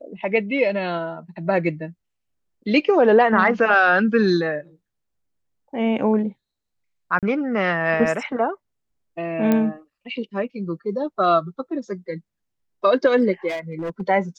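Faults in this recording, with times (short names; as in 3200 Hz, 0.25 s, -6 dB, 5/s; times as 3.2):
7.19–7.23 gap 37 ms
9.52 pop -8 dBFS
13.48–14.02 clipped -23.5 dBFS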